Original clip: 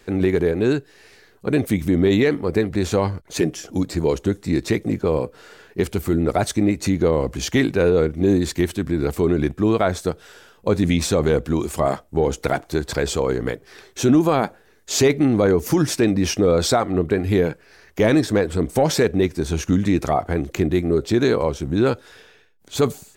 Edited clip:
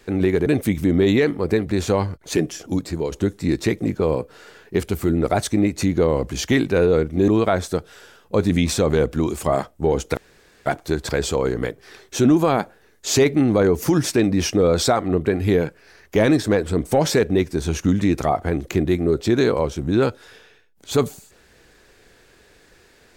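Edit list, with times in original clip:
0.46–1.50 s: delete
3.73–4.16 s: fade out, to -7 dB
8.32–9.61 s: delete
12.50 s: insert room tone 0.49 s

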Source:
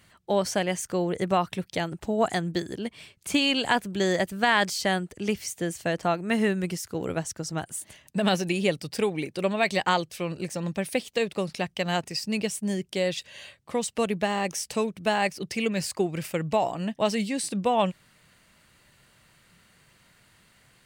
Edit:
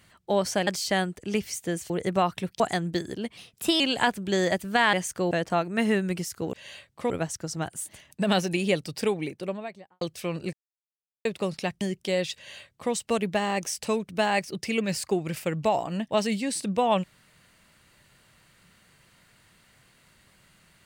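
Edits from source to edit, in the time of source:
0.67–1.05 s: swap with 4.61–5.84 s
1.75–2.21 s: delete
2.98–3.48 s: speed 116%
8.99–9.97 s: studio fade out
10.49–11.21 s: mute
11.77–12.69 s: delete
13.23–13.80 s: copy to 7.06 s

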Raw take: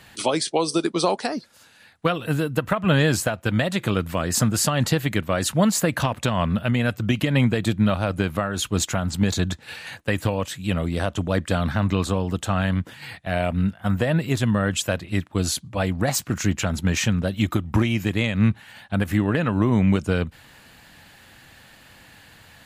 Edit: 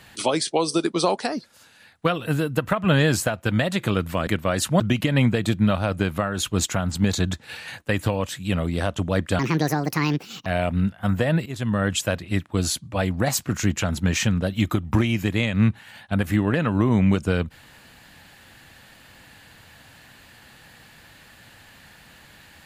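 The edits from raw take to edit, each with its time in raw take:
4.27–5.11 s: delete
5.64–6.99 s: delete
11.58–13.27 s: speed 158%
14.27–14.64 s: fade in, from -15 dB

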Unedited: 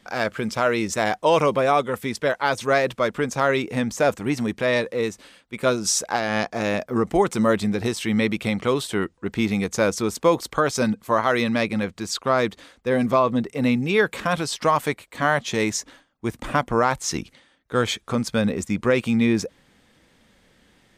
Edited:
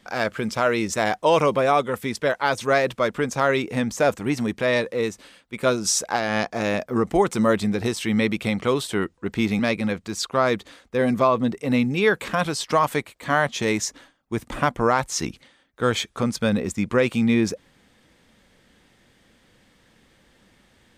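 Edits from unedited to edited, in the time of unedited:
9.59–11.51 s: delete

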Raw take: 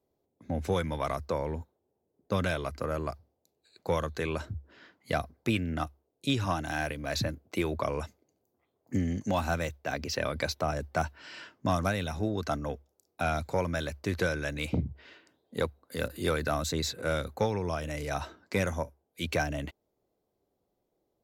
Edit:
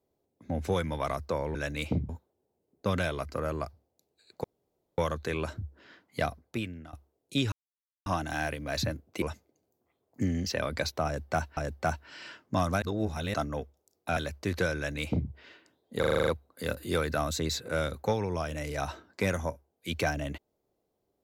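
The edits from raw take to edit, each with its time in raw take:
3.90 s: insert room tone 0.54 s
5.15–5.85 s: fade out, to -22 dB
6.44 s: insert silence 0.54 s
7.60–7.95 s: delete
9.19–10.09 s: delete
10.69–11.20 s: loop, 2 plays
11.94–12.46 s: reverse
13.29–13.78 s: delete
14.37–14.91 s: copy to 1.55 s
15.60 s: stutter 0.04 s, 8 plays

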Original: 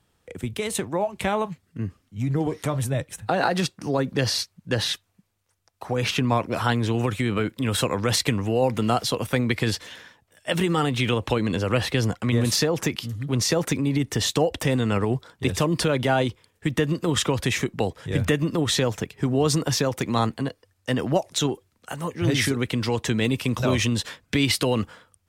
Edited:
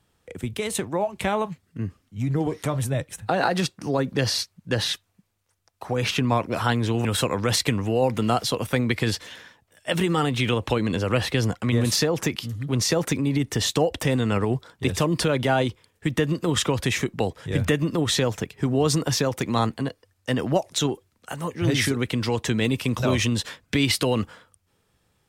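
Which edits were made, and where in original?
7.05–7.65 s: delete

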